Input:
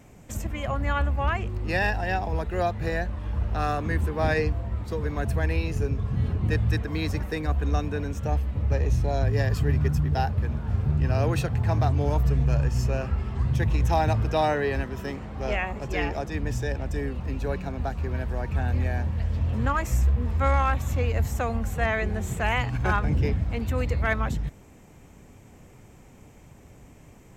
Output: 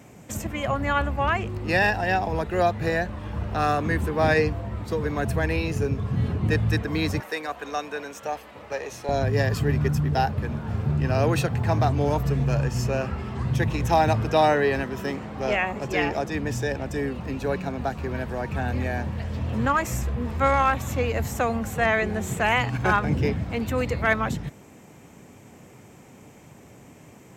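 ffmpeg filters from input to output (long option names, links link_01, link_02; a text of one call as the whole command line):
ffmpeg -i in.wav -af "asetnsamples=nb_out_samples=441:pad=0,asendcmd='7.2 highpass f 550;9.09 highpass f 130',highpass=110,volume=4.5dB" out.wav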